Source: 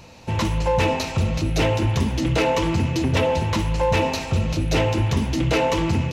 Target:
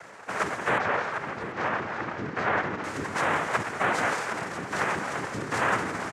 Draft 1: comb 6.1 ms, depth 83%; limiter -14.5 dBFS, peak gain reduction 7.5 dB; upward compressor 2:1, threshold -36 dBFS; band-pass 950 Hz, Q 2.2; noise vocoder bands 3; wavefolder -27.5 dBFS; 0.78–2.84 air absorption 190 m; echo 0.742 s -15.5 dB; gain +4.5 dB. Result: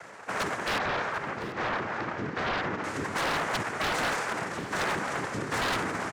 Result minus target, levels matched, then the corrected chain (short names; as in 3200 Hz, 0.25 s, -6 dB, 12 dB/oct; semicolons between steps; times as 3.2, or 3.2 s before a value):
wavefolder: distortion +32 dB
comb 6.1 ms, depth 83%; limiter -14.5 dBFS, peak gain reduction 7.5 dB; upward compressor 2:1, threshold -36 dBFS; band-pass 950 Hz, Q 2.2; noise vocoder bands 3; wavefolder -18 dBFS; 0.78–2.84 air absorption 190 m; echo 0.742 s -15.5 dB; gain +4.5 dB